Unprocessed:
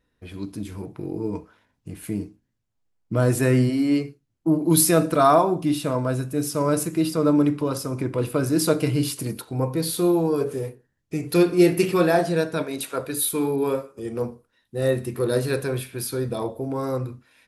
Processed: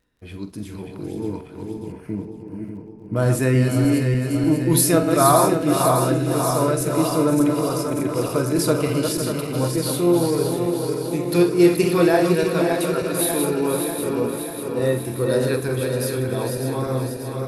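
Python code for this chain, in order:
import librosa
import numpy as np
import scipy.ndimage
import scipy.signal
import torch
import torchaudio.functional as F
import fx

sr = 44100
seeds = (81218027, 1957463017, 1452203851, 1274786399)

y = fx.reverse_delay_fb(x, sr, ms=296, feedback_pct=77, wet_db=-5.5)
y = fx.moving_average(y, sr, points=12, at=(1.92, 3.16))
y = fx.dmg_crackle(y, sr, seeds[0], per_s=41.0, level_db=-51.0)
y = fx.echo_multitap(y, sr, ms=(46, 505), db=(-12.5, -10.5))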